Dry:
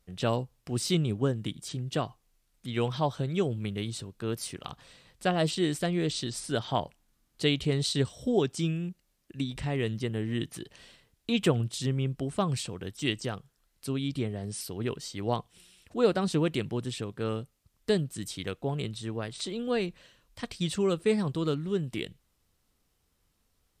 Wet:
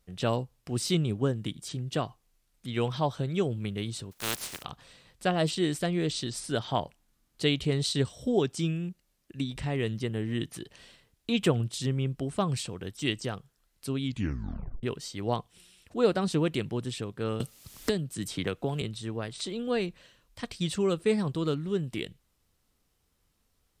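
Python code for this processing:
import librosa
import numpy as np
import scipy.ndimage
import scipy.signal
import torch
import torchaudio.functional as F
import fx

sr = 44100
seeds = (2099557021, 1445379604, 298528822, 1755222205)

y = fx.spec_flatten(x, sr, power=0.23, at=(4.11, 4.62), fade=0.02)
y = fx.band_squash(y, sr, depth_pct=100, at=(17.4, 18.82))
y = fx.edit(y, sr, fx.tape_stop(start_s=14.04, length_s=0.79), tone=tone)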